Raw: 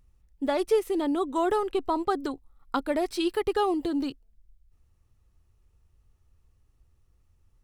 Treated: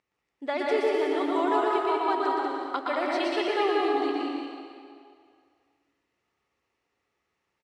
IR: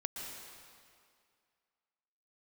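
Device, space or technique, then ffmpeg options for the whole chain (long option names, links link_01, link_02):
station announcement: -filter_complex "[0:a]highpass=400,lowpass=5000,equalizer=frequency=2100:width_type=o:width=0.44:gain=7.5,aecho=1:1:119.5|189.5:0.708|0.631[link_01];[1:a]atrim=start_sample=2205[link_02];[link_01][link_02]afir=irnorm=-1:irlink=0"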